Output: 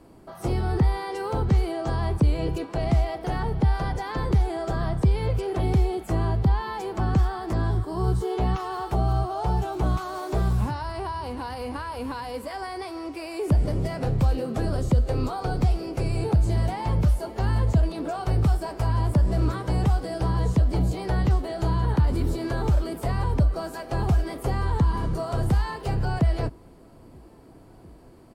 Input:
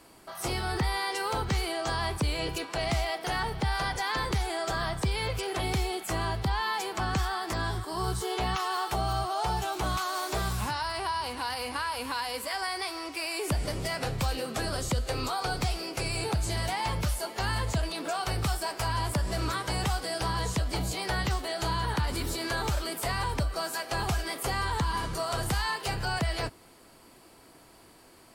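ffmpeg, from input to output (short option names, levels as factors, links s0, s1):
-filter_complex "[0:a]tiltshelf=f=870:g=10,asplit=2[s0][s1];[s1]adelay=1633,volume=0.0355,highshelf=f=4000:g=-36.7[s2];[s0][s2]amix=inputs=2:normalize=0"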